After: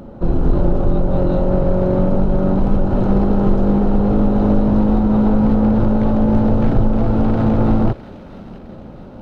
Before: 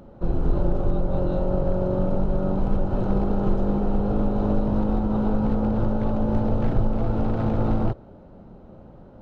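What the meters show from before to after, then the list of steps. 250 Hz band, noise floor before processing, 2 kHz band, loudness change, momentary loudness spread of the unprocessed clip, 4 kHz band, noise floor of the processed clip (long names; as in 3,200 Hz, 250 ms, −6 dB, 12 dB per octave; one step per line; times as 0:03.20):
+9.5 dB, −46 dBFS, +7.5 dB, +8.5 dB, 2 LU, can't be measured, −36 dBFS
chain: parametric band 240 Hz +4 dB 0.73 octaves
in parallel at −4.5 dB: soft clipping −27 dBFS, distortion −7 dB
on the sum: delay with a high-pass on its return 659 ms, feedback 56%, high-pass 2,000 Hz, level −10 dB
level +5 dB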